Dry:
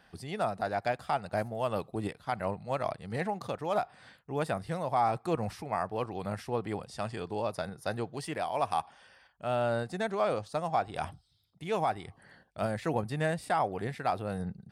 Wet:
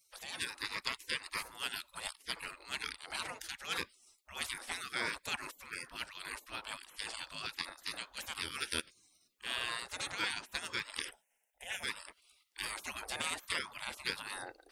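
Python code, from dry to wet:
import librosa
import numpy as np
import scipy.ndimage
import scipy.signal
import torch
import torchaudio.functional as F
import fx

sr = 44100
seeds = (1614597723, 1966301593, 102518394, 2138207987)

y = fx.spec_gate(x, sr, threshold_db=-25, keep='weak')
y = fx.fixed_phaser(y, sr, hz=1200.0, stages=6, at=(11.09, 11.82), fade=0.02)
y = F.gain(torch.from_numpy(y), 11.0).numpy()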